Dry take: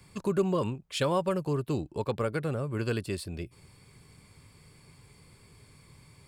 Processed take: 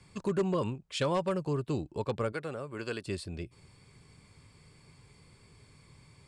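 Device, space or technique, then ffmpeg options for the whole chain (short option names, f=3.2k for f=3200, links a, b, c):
synthesiser wavefolder: -filter_complex "[0:a]asettb=1/sr,asplit=3[a][b][c];[a]atrim=end=2.324[d];[b]atrim=start=2.32:end=3.05,asetpts=PTS-STARTPTS,afade=t=in:d=0.004:c=qsin,afade=t=out:st=0.726:d=0.004:c=qsin,highpass=f=430:p=1[e];[c]atrim=start=3.046[f];[d][e]acrossfade=d=0.004:c1=hsin:c2=qsin[g];[g][f]acrossfade=d=0.004:c1=qsin:c2=hsin,aeval=exprs='0.106*(abs(mod(val(0)/0.106+3,4)-2)-1)':c=same,lowpass=f=8.9k:w=0.5412,lowpass=f=8.9k:w=1.3066,volume=-2dB"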